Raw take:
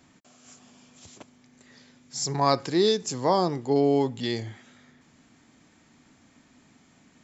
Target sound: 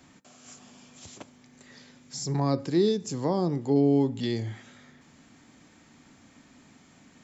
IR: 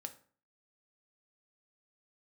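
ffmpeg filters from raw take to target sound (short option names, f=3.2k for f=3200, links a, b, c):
-filter_complex "[0:a]acrossover=split=390[a][b];[b]acompressor=threshold=-41dB:ratio=2.5[c];[a][c]amix=inputs=2:normalize=0,asplit=2[d][e];[1:a]atrim=start_sample=2205[f];[e][f]afir=irnorm=-1:irlink=0,volume=-4.5dB[g];[d][g]amix=inputs=2:normalize=0"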